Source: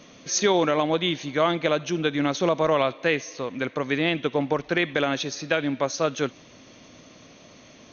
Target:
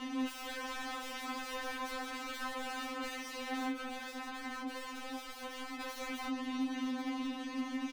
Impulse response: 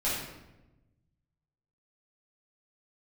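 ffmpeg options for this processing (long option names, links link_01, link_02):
-filter_complex "[0:a]lowpass=5200,equalizer=frequency=270:width=3.5:gain=9.5,aecho=1:1:6.7:0.54,acompressor=threshold=-21dB:ratio=5,asoftclip=type=tanh:threshold=-26dB,flanger=delay=4.1:depth=7.4:regen=-88:speed=0.36:shape=triangular,aeval=exprs='(mod(112*val(0)+1,2)-1)/112':channel_layout=same,asplit=2[link_01][link_02];[link_02]highpass=frequency=720:poles=1,volume=23dB,asoftclip=type=tanh:threshold=-40.5dB[link_03];[link_01][link_03]amix=inputs=2:normalize=0,lowpass=frequency=1600:poles=1,volume=-6dB,asplit=3[link_04][link_05][link_06];[link_04]afade=type=out:start_time=3.72:duration=0.02[link_07];[link_05]flanger=delay=19.5:depth=7.6:speed=2.4,afade=type=in:start_time=3.72:duration=0.02,afade=type=out:start_time=5.79:duration=0.02[link_08];[link_06]afade=type=in:start_time=5.79:duration=0.02[link_09];[link_07][link_08][link_09]amix=inputs=3:normalize=0,afftfilt=real='re*3.46*eq(mod(b,12),0)':imag='im*3.46*eq(mod(b,12),0)':win_size=2048:overlap=0.75,volume=9dB"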